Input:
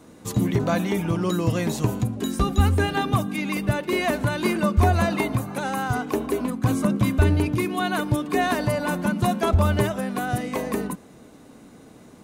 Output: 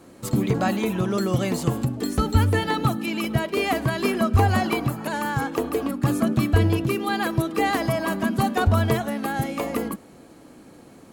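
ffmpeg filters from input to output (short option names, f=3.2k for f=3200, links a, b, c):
-af "asetrate=48510,aresample=44100"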